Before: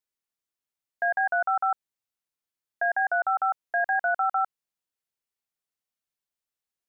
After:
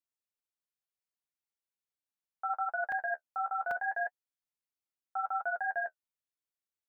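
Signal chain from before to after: reverse the whole clip; flange 0.73 Hz, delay 7.4 ms, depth 9.5 ms, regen -28%; crackling interface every 0.79 s, samples 128, zero, from 0.55 s; trim -5 dB

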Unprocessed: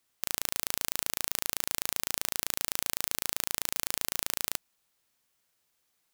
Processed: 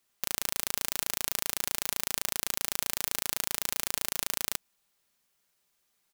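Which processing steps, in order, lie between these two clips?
comb 5 ms, depth 36%

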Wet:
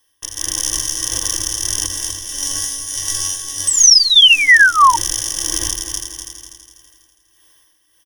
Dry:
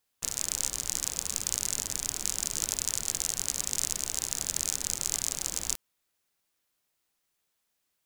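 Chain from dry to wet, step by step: tremolo 1.6 Hz, depth 79%; 1.86–4.54 s: chord resonator F#2 fifth, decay 0.37 s; multi-head delay 82 ms, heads first and third, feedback 52%, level -12 dB; level rider gain up to 9.5 dB; 3.67–4.96 s: painted sound fall 910–8400 Hz -15 dBFS; comb 2.6 ms, depth 90%; compression 1.5:1, threshold -29 dBFS, peak gain reduction 7 dB; rippled EQ curve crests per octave 1.2, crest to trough 17 dB; loudness maximiser +11.5 dB; trim -1 dB

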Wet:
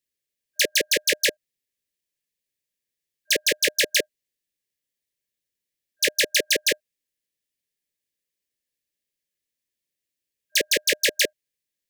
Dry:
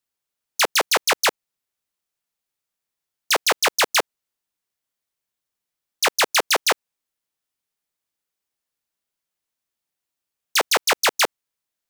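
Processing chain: FFT band-reject 610–1600 Hz; trim -1 dB

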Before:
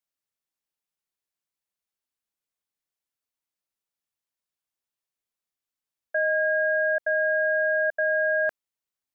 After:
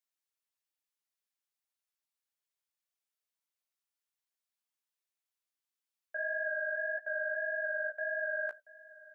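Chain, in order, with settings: high-pass 940 Hz 6 dB/octave; peak limiter -27 dBFS, peak gain reduction 7 dB; flange 1.7 Hz, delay 7.9 ms, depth 9.1 ms, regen +20%; delay 682 ms -20 dB; trim +1.5 dB

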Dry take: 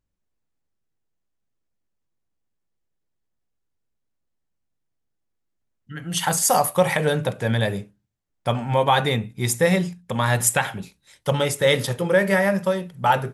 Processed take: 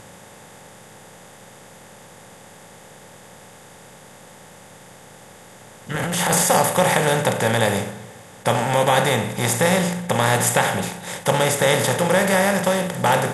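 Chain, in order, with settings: spectral levelling over time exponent 0.4; 5.94–6.47 s: transient shaper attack -10 dB, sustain +11 dB; spring tank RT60 2 s, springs 34/49 ms, chirp 30 ms, DRR 16.5 dB; trim -4 dB

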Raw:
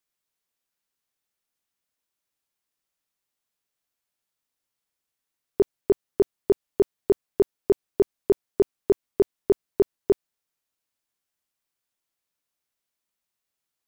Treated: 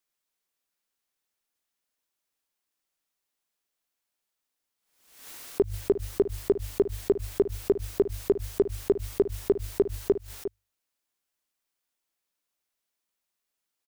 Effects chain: peaking EQ 120 Hz -7.5 dB 0.92 oct; hum notches 50/100 Hz; delay 354 ms -12.5 dB; compression, threshold -17 dBFS, peak gain reduction 3.5 dB; dynamic bell 1 kHz, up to -5 dB, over -42 dBFS, Q 1.1; swell ahead of each attack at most 80 dB/s

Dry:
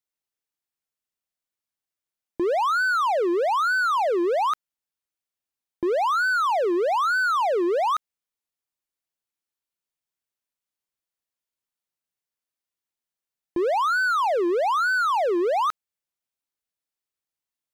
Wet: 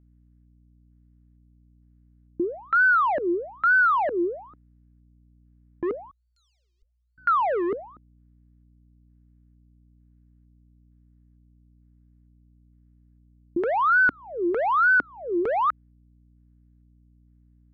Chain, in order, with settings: LFO low-pass square 1.1 Hz 280–1700 Hz; hum 60 Hz, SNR 30 dB; 6.11–7.18 s: inverse Chebyshev band-stop 140–1800 Hz, stop band 60 dB; trim -3 dB

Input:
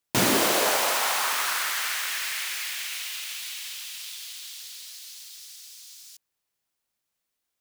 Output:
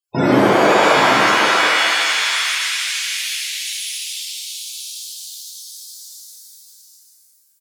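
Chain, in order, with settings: loudest bins only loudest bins 32; delay 792 ms -9.5 dB; pitch-shifted reverb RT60 1.8 s, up +7 st, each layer -2 dB, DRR -7 dB; trim +4 dB

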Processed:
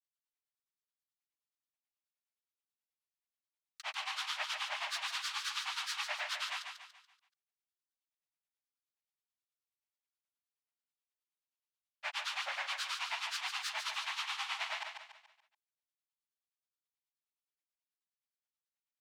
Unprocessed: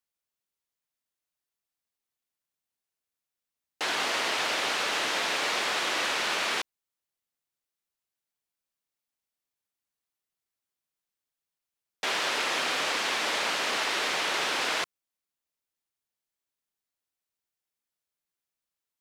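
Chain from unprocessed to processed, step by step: rippled Chebyshev high-pass 810 Hz, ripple 6 dB; granulator, grains 9.4 per s, spray 22 ms, pitch spread up and down by 7 st; feedback delay 143 ms, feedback 41%, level -6 dB; trim -4 dB

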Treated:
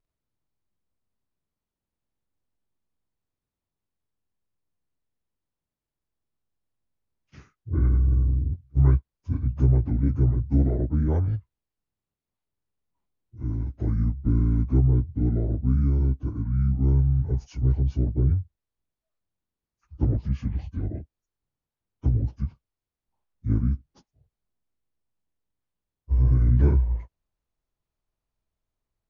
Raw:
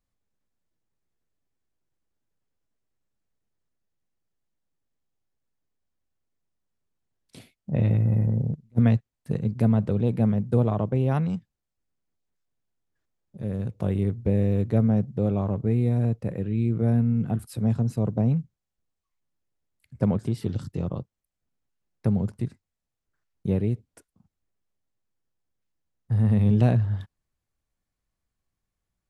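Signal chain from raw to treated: frequency-domain pitch shifter -9.5 st; treble shelf 2.1 kHz -8 dB; trim +2 dB

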